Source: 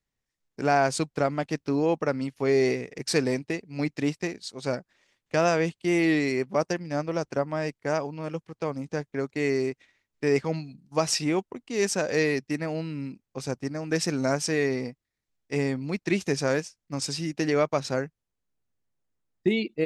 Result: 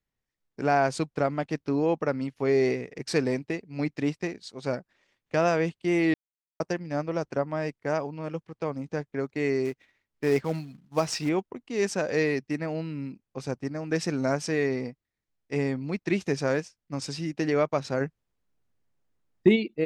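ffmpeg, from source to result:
ffmpeg -i in.wav -filter_complex "[0:a]asettb=1/sr,asplit=3[link_01][link_02][link_03];[link_01]atrim=end=9.654[link_04];[link_02]atrim=start=9.65:end=11.29,asetpts=PTS-STARTPTS,afade=type=in:duration=0.004:curve=qsin,afade=type=out:start_time=1.636:duration=0.004:curve=qsin,acrusher=bits=4:mode=log:mix=0:aa=0.000001[link_05];[link_03]atrim=start=11.286[link_06];[link_04][link_05]acrossfade=duration=0.004:curve1=hsin:curve2=qsin[link_07];[link_07][link_06]acrossfade=duration=0.004:curve1=qsin:curve2=hsin,asplit=3[link_08][link_09][link_10];[link_08]afade=type=out:start_time=18:duration=0.02[link_11];[link_09]acontrast=53,afade=type=in:start_time=18:duration=0.02,afade=type=out:start_time=19.55:duration=0.02[link_12];[link_10]afade=type=in:start_time=19.55:duration=0.02[link_13];[link_11][link_12][link_13]amix=inputs=3:normalize=0,asplit=3[link_14][link_15][link_16];[link_14]atrim=end=6.14,asetpts=PTS-STARTPTS,afade=type=out:start_time=6.136:duration=0.004:curve=hsin[link_17];[link_15]atrim=start=6.14:end=6.6,asetpts=PTS-STARTPTS,volume=0[link_18];[link_16]atrim=start=6.6,asetpts=PTS-STARTPTS,afade=type=in:duration=0.004:curve=hsin[link_19];[link_17][link_18][link_19]concat=n=3:v=0:a=1,aemphasis=mode=reproduction:type=cd,volume=-1dB" out.wav

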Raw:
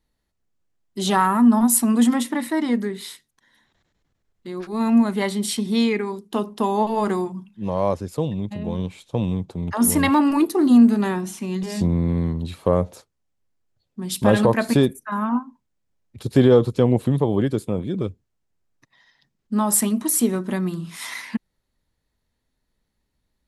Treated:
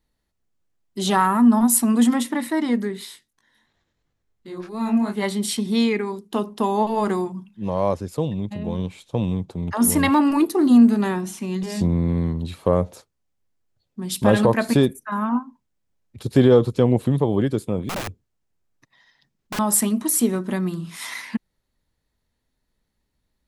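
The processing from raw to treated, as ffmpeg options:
ffmpeg -i in.wav -filter_complex "[0:a]asplit=3[link_01][link_02][link_03];[link_01]afade=type=out:start_time=3.04:duration=0.02[link_04];[link_02]flanger=delay=18.5:depth=4.6:speed=2.9,afade=type=in:start_time=3.04:duration=0.02,afade=type=out:start_time=5.22:duration=0.02[link_05];[link_03]afade=type=in:start_time=5.22:duration=0.02[link_06];[link_04][link_05][link_06]amix=inputs=3:normalize=0,asettb=1/sr,asplit=3[link_07][link_08][link_09];[link_07]atrim=end=17.894[link_10];[link_08]atrim=start=17.89:end=19.59,asetpts=PTS-STARTPTS,afade=type=in:duration=0.004:curve=qsin,afade=type=out:start_time=1.696:duration=0.004:curve=qsin,aeval=exprs='(mod(15*val(0)+1,2)-1)/15':channel_layout=same[link_11];[link_09]atrim=start=19.586[link_12];[link_10][link_11]acrossfade=duration=0.004:curve1=hsin:curve2=qsin[link_13];[link_13][link_12]acrossfade=duration=0.004:curve1=qsin:curve2=hsin" out.wav

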